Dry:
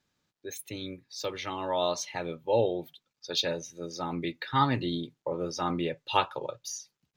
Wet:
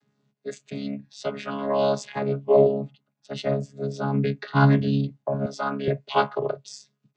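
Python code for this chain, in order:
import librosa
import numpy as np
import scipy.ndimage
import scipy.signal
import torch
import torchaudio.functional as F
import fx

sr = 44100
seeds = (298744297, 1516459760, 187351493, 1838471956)

y = fx.chord_vocoder(x, sr, chord='bare fifth', root=49)
y = fx.peak_eq(y, sr, hz=4600.0, db=-9.0, octaves=1.6, at=(2.49, 3.77))
y = fx.highpass(y, sr, hz=380.0, slope=12, at=(5.46, 5.88))
y = y * librosa.db_to_amplitude(8.5)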